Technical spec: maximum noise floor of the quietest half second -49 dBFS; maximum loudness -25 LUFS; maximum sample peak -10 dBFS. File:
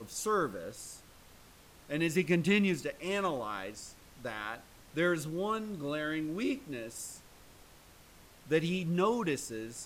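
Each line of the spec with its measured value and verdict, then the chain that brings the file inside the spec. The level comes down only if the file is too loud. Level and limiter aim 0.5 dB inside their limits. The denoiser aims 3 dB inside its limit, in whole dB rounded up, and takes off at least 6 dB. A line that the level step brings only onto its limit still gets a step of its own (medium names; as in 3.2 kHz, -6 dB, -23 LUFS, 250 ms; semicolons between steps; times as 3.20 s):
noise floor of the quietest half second -57 dBFS: pass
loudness -33.5 LUFS: pass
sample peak -14.5 dBFS: pass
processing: none needed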